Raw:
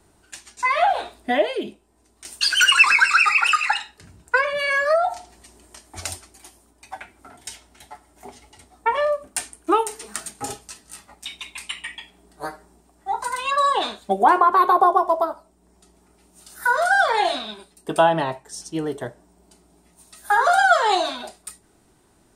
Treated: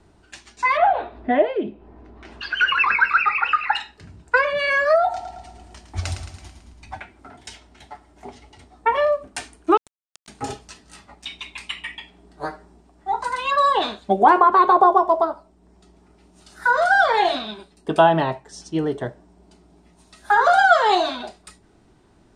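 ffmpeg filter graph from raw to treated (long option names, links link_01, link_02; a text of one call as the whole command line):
ffmpeg -i in.wav -filter_complex "[0:a]asettb=1/sr,asplit=3[link_01][link_02][link_03];[link_01]atrim=end=0.774[link_04];[link_02]atrim=start=0.77:end=3.75,asetpts=PTS-STARTPTS,afade=type=in:duration=0.004:curve=qsin,afade=type=out:start_time=2.976:duration=0.004:curve=qsin,lowpass=1800,acompressor=mode=upward:threshold=-35dB:ratio=2.5:attack=3.2:release=140:knee=2.83:detection=peak[link_05];[link_03]atrim=start=3.746[link_06];[link_04][link_05]acrossfade=duration=0.004:curve1=hsin:curve2=qsin[link_07];[link_07][link_06]acrossfade=duration=0.004:curve1=qsin:curve2=hsin,asettb=1/sr,asplit=3[link_08][link_09][link_10];[link_08]atrim=end=5.034[link_11];[link_09]atrim=start=5.03:end=7,asetpts=PTS-STARTPTS,afade=type=in:duration=0.004:curve=qsin,afade=type=out:start_time=1.966:duration=0.004:curve=qsin,asubboost=boost=8:cutoff=180,aecho=1:1:110|220|330|440|550|660|770:0.355|0.199|0.111|0.0623|0.0349|0.0195|0.0109,atrim=end_sample=86877[link_12];[link_10]atrim=start=6.996[link_13];[link_11][link_12]acrossfade=duration=0.004:curve1=hsin:curve2=qsin[link_14];[link_14][link_13]acrossfade=duration=0.004:curve1=qsin:curve2=hsin,asettb=1/sr,asplit=3[link_15][link_16][link_17];[link_15]atrim=end=9.774[link_18];[link_16]atrim=start=9.77:end=10.28,asetpts=PTS-STARTPTS,afade=type=in:duration=0.004:curve=qsin,afade=type=out:start_time=0.506:duration=0.004:curve=qsin,highpass=1300,acompressor=threshold=-39dB:ratio=3:attack=3.2:release=140:knee=1:detection=peak,aeval=exprs='val(0)*gte(abs(val(0)),0.0422)':channel_layout=same[link_19];[link_17]atrim=start=10.276[link_20];[link_18][link_19]acrossfade=duration=0.004:curve1=hsin:curve2=qsin[link_21];[link_21][link_20]acrossfade=duration=0.004:curve1=qsin:curve2=hsin,lowpass=5200,lowshelf=frequency=370:gain=4.5,volume=1dB" out.wav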